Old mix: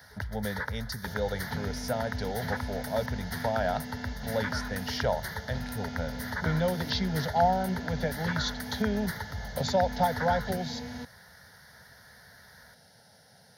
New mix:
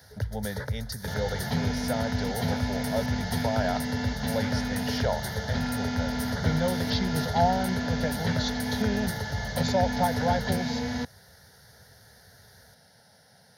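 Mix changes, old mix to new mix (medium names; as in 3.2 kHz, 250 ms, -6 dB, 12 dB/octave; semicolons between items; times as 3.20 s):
first sound: add graphic EQ 125/500/1000/2000/8000 Hz +12/+12/-9/-6/+8 dB; second sound +9.0 dB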